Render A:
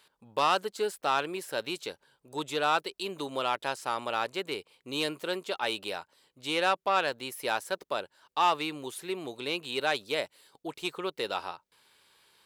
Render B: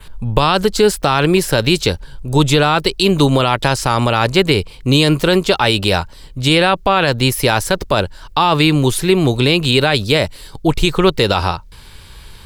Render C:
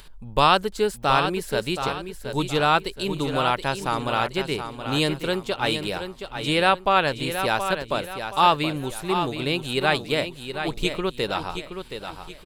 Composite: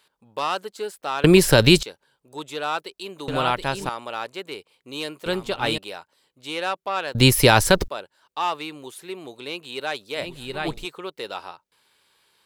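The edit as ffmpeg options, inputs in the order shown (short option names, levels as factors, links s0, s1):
-filter_complex "[1:a]asplit=2[s0][s1];[2:a]asplit=3[s2][s3][s4];[0:a]asplit=6[s5][s6][s7][s8][s9][s10];[s5]atrim=end=1.242[s11];[s0]atrim=start=1.238:end=1.832[s12];[s6]atrim=start=1.828:end=3.282[s13];[s2]atrim=start=3.278:end=3.892[s14];[s7]atrim=start=3.888:end=5.262[s15];[s3]atrim=start=5.258:end=5.782[s16];[s8]atrim=start=5.778:end=7.152[s17];[s1]atrim=start=7.148:end=7.882[s18];[s9]atrim=start=7.878:end=10.3[s19];[s4]atrim=start=10.14:end=10.87[s20];[s10]atrim=start=10.71[s21];[s11][s12]acrossfade=d=0.004:c1=hsin:c2=hsin[s22];[s22][s13]acrossfade=d=0.004:c1=hsin:c2=hsin[s23];[s23][s14]acrossfade=d=0.004:c1=hsin:c2=hsin[s24];[s24][s15]acrossfade=d=0.004:c1=hsin:c2=hsin[s25];[s25][s16]acrossfade=d=0.004:c1=hsin:c2=hsin[s26];[s26][s17]acrossfade=d=0.004:c1=hsin:c2=hsin[s27];[s27][s18]acrossfade=d=0.004:c1=hsin:c2=hsin[s28];[s28][s19]acrossfade=d=0.004:c1=hsin:c2=hsin[s29];[s29][s20]acrossfade=d=0.16:c1=tri:c2=tri[s30];[s30][s21]acrossfade=d=0.16:c1=tri:c2=tri"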